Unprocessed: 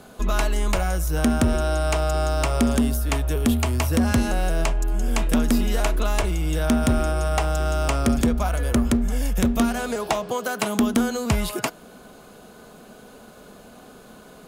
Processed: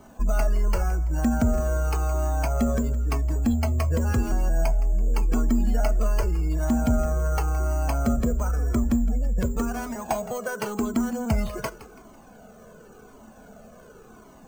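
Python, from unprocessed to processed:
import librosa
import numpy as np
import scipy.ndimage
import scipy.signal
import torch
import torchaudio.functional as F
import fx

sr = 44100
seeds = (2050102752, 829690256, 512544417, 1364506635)

p1 = fx.spec_gate(x, sr, threshold_db=-30, keep='strong')
p2 = fx.high_shelf(p1, sr, hz=2600.0, db=-9.0)
p3 = np.clip(p2, -10.0 ** (-29.0 / 20.0), 10.0 ** (-29.0 / 20.0))
p4 = p2 + F.gain(torch.from_numpy(p3), -10.5).numpy()
p5 = fx.comb_fb(p4, sr, f0_hz=220.0, decay_s=0.23, harmonics='all', damping=0.0, mix_pct=50)
p6 = p5 + fx.echo_feedback(p5, sr, ms=166, feedback_pct=40, wet_db=-16.5, dry=0)
p7 = np.repeat(scipy.signal.resample_poly(p6, 1, 6), 6)[:len(p6)]
p8 = fx.comb_cascade(p7, sr, direction='falling', hz=0.91)
y = F.gain(torch.from_numpy(p8), 5.5).numpy()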